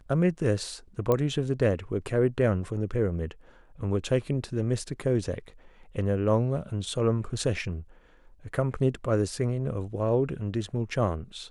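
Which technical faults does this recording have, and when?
1.12 pop -13 dBFS

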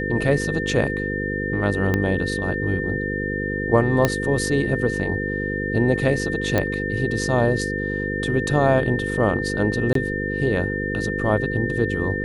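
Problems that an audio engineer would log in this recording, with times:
buzz 50 Hz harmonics 10 -27 dBFS
tone 1800 Hz -27 dBFS
1.94 pop -9 dBFS
4.05 pop -4 dBFS
6.58 pop -7 dBFS
9.93–9.95 gap 23 ms

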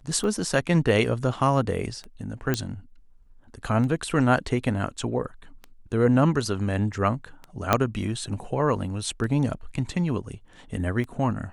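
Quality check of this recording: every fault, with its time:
tick 33 1/3 rpm -23 dBFS
2.54 pop -9 dBFS
7.73 pop -4 dBFS

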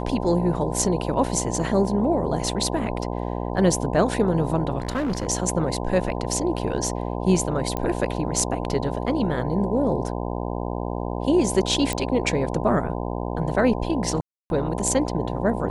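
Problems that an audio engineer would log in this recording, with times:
buzz 60 Hz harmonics 17 -28 dBFS
4.78–5.27 clipped -21 dBFS
7.77 pop -12 dBFS
11.93 pop -10 dBFS
14.21–14.5 gap 0.291 s

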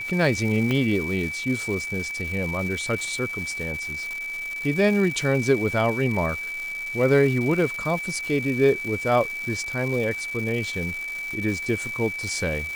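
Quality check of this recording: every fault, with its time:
crackle 530/s -31 dBFS
tone 2300 Hz -29 dBFS
0.71 pop -12 dBFS

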